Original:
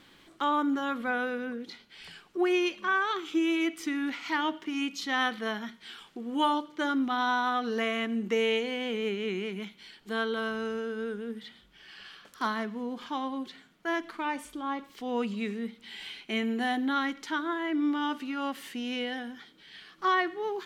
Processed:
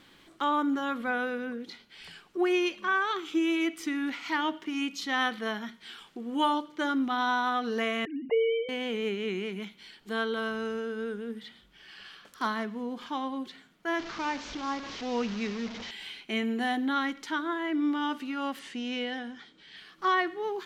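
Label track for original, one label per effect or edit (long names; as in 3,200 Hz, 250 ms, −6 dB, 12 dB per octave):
8.050000	8.690000	three sine waves on the formant tracks
13.990000	15.910000	linear delta modulator 32 kbit/s, step −34 dBFS
18.590000	19.770000	low-pass filter 8,200 Hz 24 dB per octave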